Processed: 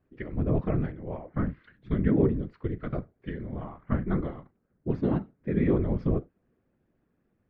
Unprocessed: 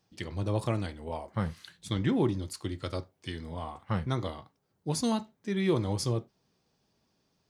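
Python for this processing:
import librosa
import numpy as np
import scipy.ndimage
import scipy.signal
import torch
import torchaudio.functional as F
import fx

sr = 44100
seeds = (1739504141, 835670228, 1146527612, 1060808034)

y = scipy.signal.sosfilt(scipy.signal.butter(4, 1800.0, 'lowpass', fs=sr, output='sos'), x)
y = fx.peak_eq(y, sr, hz=890.0, db=-12.0, octaves=0.94)
y = fx.whisperise(y, sr, seeds[0])
y = y * 10.0 ** (4.5 / 20.0)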